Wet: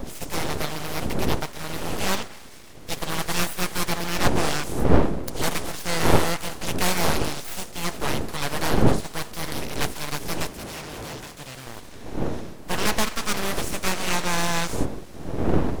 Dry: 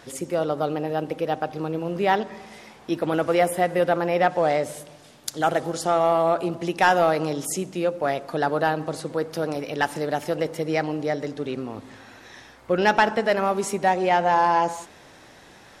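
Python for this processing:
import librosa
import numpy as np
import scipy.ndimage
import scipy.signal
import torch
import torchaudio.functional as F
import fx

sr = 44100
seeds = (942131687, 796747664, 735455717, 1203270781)

y = fx.spec_flatten(x, sr, power=0.48)
y = fx.dmg_wind(y, sr, seeds[0], corner_hz=200.0, level_db=-21.0)
y = fx.highpass(y, sr, hz=53.0, slope=6)
y = np.abs(y)
y = fx.tube_stage(y, sr, drive_db=17.0, bias=0.4, at=(10.49, 11.67))
y = F.gain(torch.from_numpy(y), -2.0).numpy()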